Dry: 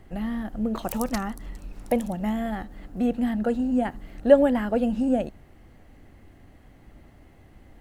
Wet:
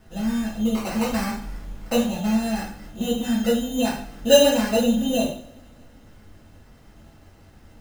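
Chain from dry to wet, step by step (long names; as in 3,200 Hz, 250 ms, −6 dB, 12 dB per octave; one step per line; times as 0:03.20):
decimation without filtering 13×
coupled-rooms reverb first 0.49 s, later 2.3 s, from −27 dB, DRR −8.5 dB
level −6 dB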